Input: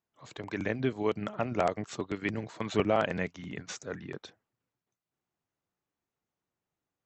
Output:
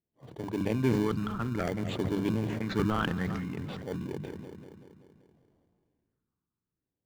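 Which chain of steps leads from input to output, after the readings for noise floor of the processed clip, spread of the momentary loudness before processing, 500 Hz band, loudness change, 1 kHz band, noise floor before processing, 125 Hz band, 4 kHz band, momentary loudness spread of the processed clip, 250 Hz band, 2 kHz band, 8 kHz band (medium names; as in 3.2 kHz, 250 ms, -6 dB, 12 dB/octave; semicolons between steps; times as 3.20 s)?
under -85 dBFS, 14 LU, -2.5 dB, +1.0 dB, -2.5 dB, under -85 dBFS, +6.5 dB, +0.5 dB, 15 LU, +4.5 dB, -2.0 dB, -4.5 dB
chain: level-controlled noise filter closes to 970 Hz, open at -24.5 dBFS; phase shifter stages 6, 0.58 Hz, lowest notch 580–1900 Hz; filtered feedback delay 191 ms, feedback 53%, low-pass 4.2 kHz, level -18.5 dB; in parallel at -6 dB: sample-rate reducer 1.3 kHz, jitter 0%; on the sum: treble shelf 4.7 kHz -4.5 dB; hum notches 50/100/150/200 Hz; decay stretcher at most 23 dB/s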